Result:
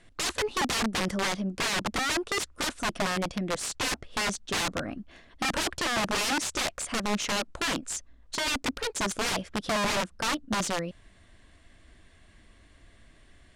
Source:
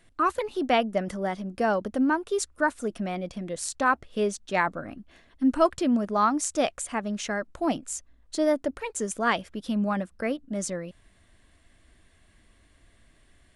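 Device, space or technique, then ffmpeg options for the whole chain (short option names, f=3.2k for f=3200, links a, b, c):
overflowing digital effects unit: -af "aeval=exprs='(mod(18.8*val(0)+1,2)-1)/18.8':c=same,lowpass=8k,volume=3.5dB"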